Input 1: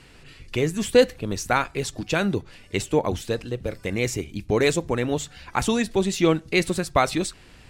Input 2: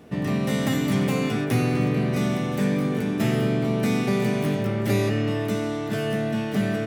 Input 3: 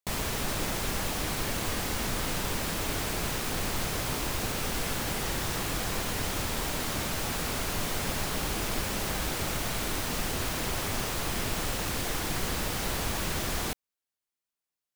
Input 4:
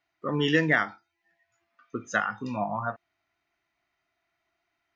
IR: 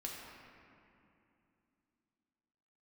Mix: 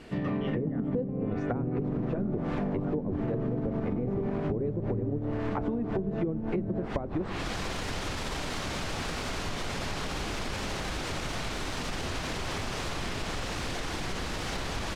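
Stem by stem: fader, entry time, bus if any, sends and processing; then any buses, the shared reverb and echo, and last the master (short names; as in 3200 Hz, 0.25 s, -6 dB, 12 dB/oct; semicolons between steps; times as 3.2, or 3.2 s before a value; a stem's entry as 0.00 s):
-1.0 dB, 0.00 s, send -18.5 dB, high shelf 4000 Hz -6.5 dB
-2.0 dB, 0.00 s, send -9 dB, LPF 3400 Hz 6 dB/oct; notches 60/120/180/240 Hz; tremolo saw up 10 Hz, depth 30%
+1.0 dB, 1.70 s, send -13 dB, limiter -24.5 dBFS, peak gain reduction 6.5 dB
-6.0 dB, 0.00 s, no send, dry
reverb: on, RT60 2.7 s, pre-delay 3 ms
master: treble ducked by the level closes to 400 Hz, closed at -17 dBFS; compressor, threshold -27 dBFS, peak gain reduction 12 dB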